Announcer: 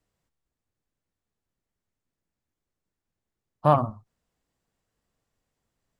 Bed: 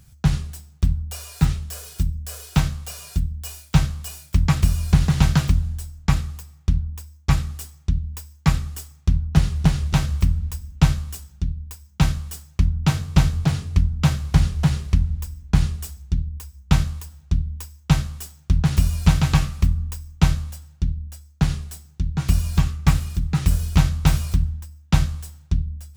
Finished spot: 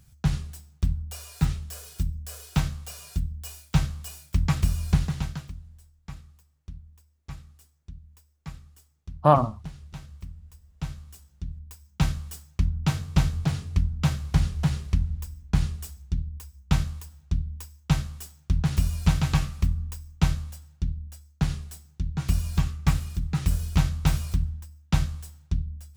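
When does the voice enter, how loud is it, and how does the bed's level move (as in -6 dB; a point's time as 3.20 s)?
5.60 s, +2.0 dB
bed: 4.94 s -5.5 dB
5.52 s -21.5 dB
10.44 s -21.5 dB
11.92 s -5.5 dB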